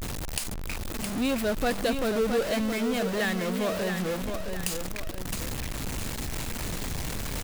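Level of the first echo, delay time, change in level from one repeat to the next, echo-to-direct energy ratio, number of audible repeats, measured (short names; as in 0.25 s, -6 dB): -6.5 dB, 0.666 s, -7.5 dB, -6.0 dB, 2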